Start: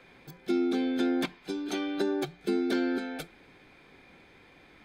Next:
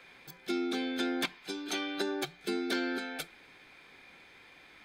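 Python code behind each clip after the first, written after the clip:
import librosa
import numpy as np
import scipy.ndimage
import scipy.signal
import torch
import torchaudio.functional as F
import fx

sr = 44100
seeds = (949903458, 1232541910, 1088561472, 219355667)

y = fx.tilt_shelf(x, sr, db=-6.0, hz=740.0)
y = y * 10.0 ** (-2.0 / 20.0)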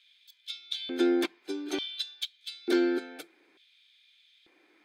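y = fx.filter_lfo_highpass(x, sr, shape='square', hz=0.56, low_hz=330.0, high_hz=3400.0, q=4.9)
y = fx.upward_expand(y, sr, threshold_db=-42.0, expansion=1.5)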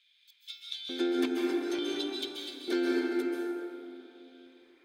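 y = fx.rev_plate(x, sr, seeds[0], rt60_s=3.0, hf_ratio=0.4, predelay_ms=120, drr_db=-3.0)
y = y * 10.0 ** (-5.0 / 20.0)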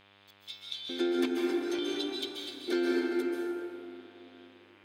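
y = fx.dmg_buzz(x, sr, base_hz=100.0, harmonics=32, level_db=-62.0, tilt_db=-1, odd_only=False)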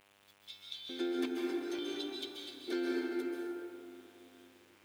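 y = fx.quant_dither(x, sr, seeds[1], bits=10, dither='none')
y = y * 10.0 ** (-6.0 / 20.0)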